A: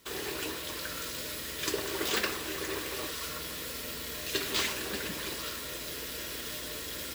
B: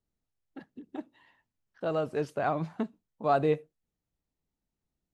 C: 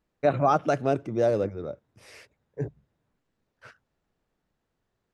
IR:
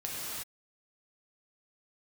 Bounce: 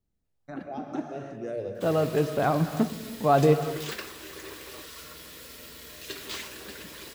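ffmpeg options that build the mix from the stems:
-filter_complex "[0:a]adelay=1750,volume=-10dB[a];[1:a]lowshelf=f=340:g=7.5,volume=-2dB,asplit=3[b][c][d];[c]volume=-12.5dB[e];[2:a]alimiter=limit=-14.5dB:level=0:latency=1:release=149,asplit=2[f][g];[g]afreqshift=2.3[h];[f][h]amix=inputs=2:normalize=1,adelay=250,volume=-13.5dB,asplit=2[i][j];[j]volume=-6dB[k];[d]apad=whole_len=237285[l];[i][l]sidechaincompress=threshold=-50dB:ratio=8:attack=16:release=198[m];[3:a]atrim=start_sample=2205[n];[e][k]amix=inputs=2:normalize=0[o];[o][n]afir=irnorm=-1:irlink=0[p];[a][b][m][p]amix=inputs=4:normalize=0,dynaudnorm=f=180:g=5:m=3.5dB"

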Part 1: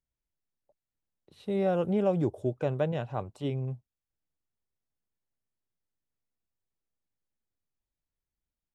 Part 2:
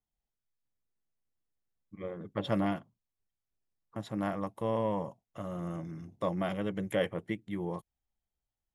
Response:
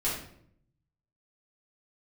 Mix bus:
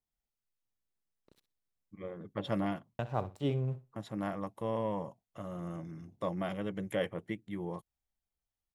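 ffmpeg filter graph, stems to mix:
-filter_complex "[0:a]aeval=exprs='sgn(val(0))*max(abs(val(0))-0.00168,0)':c=same,volume=0.5dB,asplit=3[a][b][c];[a]atrim=end=1.4,asetpts=PTS-STARTPTS,afade=t=out:st=1.396:d=0.004:c=hsin[d];[b]atrim=start=1.4:end=2.99,asetpts=PTS-STARTPTS,volume=0[e];[c]atrim=start=2.99,asetpts=PTS-STARTPTS,afade=t=in:d=0.004:c=hsin[f];[d][e][f]concat=n=3:v=0:a=1,asplit=2[g][h];[h]volume=-15dB[i];[1:a]volume=-3dB[j];[i]aecho=0:1:63|126|189:1|0.17|0.0289[k];[g][j][k]amix=inputs=3:normalize=0"

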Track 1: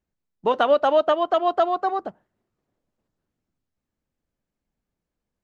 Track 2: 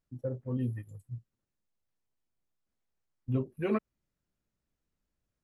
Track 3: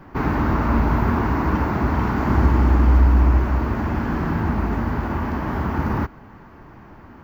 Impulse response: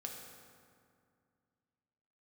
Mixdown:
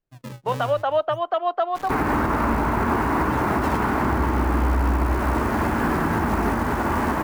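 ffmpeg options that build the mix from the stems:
-filter_complex "[0:a]acrossover=split=470 3900:gain=0.224 1 0.2[a][b][c];[a][b][c]amix=inputs=3:normalize=0,volume=-5.5dB[d];[1:a]equalizer=f=210:w=1.2:g=-7.5,aecho=1:1:6.5:0.4,acrusher=samples=36:mix=1:aa=0.000001:lfo=1:lforange=57.6:lforate=0.55,volume=0dB[e];[2:a]bass=f=250:g=-9,treble=f=4k:g=-7,acrusher=bits=8:dc=4:mix=0:aa=0.000001,adelay=1750,volume=2.5dB[f];[d][e][f]amix=inputs=3:normalize=0,dynaudnorm=f=280:g=3:m=5dB,alimiter=limit=-12.5dB:level=0:latency=1:release=134"

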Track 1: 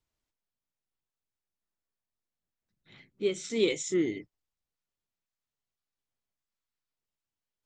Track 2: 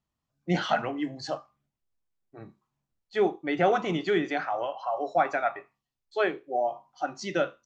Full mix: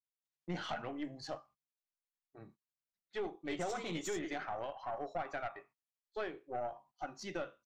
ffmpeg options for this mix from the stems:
-filter_complex "[0:a]highpass=f=1.2k:p=1,alimiter=level_in=3dB:limit=-24dB:level=0:latency=1,volume=-3dB,tremolo=f=11:d=0.58,adelay=250,volume=-4.5dB[a];[1:a]agate=range=-24dB:threshold=-52dB:ratio=16:detection=peak,acompressor=threshold=-25dB:ratio=5,volume=-7.5dB[b];[a][b]amix=inputs=2:normalize=0,aeval=exprs='(tanh(31.6*val(0)+0.45)-tanh(0.45))/31.6':c=same"

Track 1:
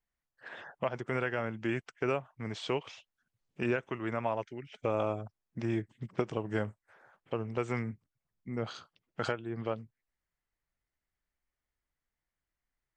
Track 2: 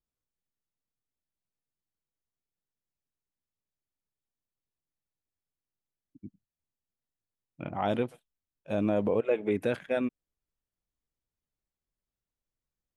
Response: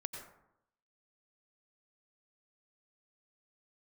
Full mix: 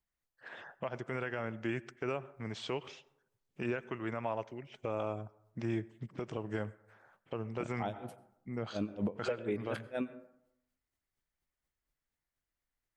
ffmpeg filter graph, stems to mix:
-filter_complex "[0:a]volume=-3.5dB,asplit=2[a][b];[b]volume=-15dB[c];[1:a]dynaudnorm=f=110:g=21:m=3.5dB,aeval=exprs='val(0)*pow(10,-37*(0.5-0.5*cos(2*PI*4.2*n/s))/20)':c=same,volume=-1.5dB,asplit=2[d][e];[e]volume=-11.5dB[f];[2:a]atrim=start_sample=2205[g];[c][f]amix=inputs=2:normalize=0[h];[h][g]afir=irnorm=-1:irlink=0[i];[a][d][i]amix=inputs=3:normalize=0,alimiter=level_in=0.5dB:limit=-24dB:level=0:latency=1:release=67,volume=-0.5dB"

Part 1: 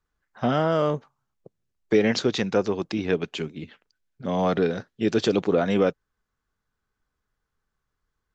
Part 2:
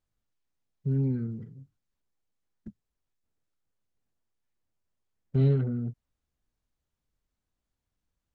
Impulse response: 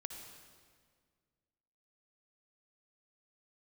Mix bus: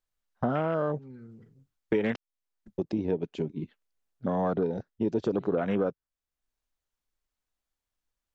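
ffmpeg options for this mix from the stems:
-filter_complex "[0:a]agate=range=-15dB:threshold=-43dB:ratio=16:detection=peak,afwtdn=0.0316,volume=2dB,asplit=3[a][b][c];[a]atrim=end=2.16,asetpts=PTS-STARTPTS,afade=t=out:st=2.156:d=0.004:c=hsin[d];[b]atrim=start=2.16:end=2.78,asetpts=PTS-STARTPTS,volume=0[e];[c]atrim=start=2.78,asetpts=PTS-STARTPTS,afade=t=in:d=0.004:c=hsin[f];[d][e][f]concat=n=3:v=0:a=1,asplit=2[g][h];[1:a]equalizer=f=120:w=0.39:g=-12.5,volume=0dB[i];[h]apad=whole_len=367802[j];[i][j]sidechaincompress=threshold=-27dB:ratio=5:attack=6.5:release=625[k];[g][k]amix=inputs=2:normalize=0,acompressor=threshold=-26dB:ratio=3"

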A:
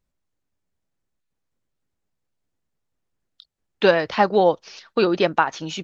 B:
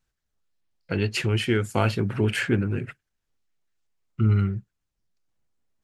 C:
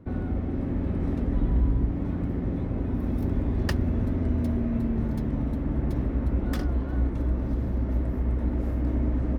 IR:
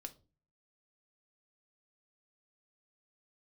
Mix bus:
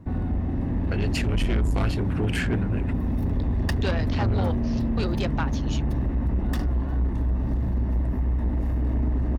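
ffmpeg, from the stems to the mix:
-filter_complex "[0:a]highshelf=f=2.5k:g=8.5,volume=-10.5dB[a];[1:a]volume=-1dB[b];[2:a]aecho=1:1:1.1:0.45,volume=2.5dB[c];[a][b][c]amix=inputs=3:normalize=0,asoftclip=type=tanh:threshold=-18.5dB"

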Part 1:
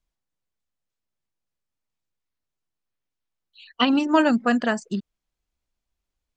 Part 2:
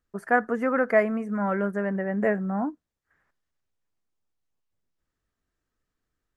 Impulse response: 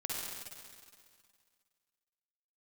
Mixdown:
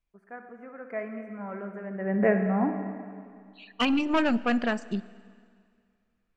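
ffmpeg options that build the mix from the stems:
-filter_complex "[0:a]aemphasis=mode=reproduction:type=50kf,aeval=exprs='(tanh(6.31*val(0)+0.3)-tanh(0.3))/6.31':c=same,volume=-3dB,asplit=2[a][b];[b]volume=-19dB[c];[1:a]lowpass=f=1.8k:p=1,volume=-1.5dB,afade=t=in:st=0.76:d=0.32:silence=0.334965,afade=t=in:st=1.91:d=0.26:silence=0.237137,asplit=2[d][e];[e]volume=-4.5dB[f];[2:a]atrim=start_sample=2205[g];[c][f]amix=inputs=2:normalize=0[h];[h][g]afir=irnorm=-1:irlink=0[i];[a][d][i]amix=inputs=3:normalize=0,equalizer=f=2.4k:w=4.6:g=9"

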